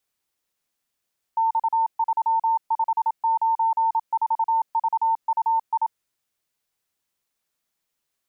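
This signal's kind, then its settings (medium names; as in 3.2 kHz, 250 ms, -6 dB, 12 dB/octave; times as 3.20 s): Morse "X3594VUI" 27 wpm 902 Hz -17.5 dBFS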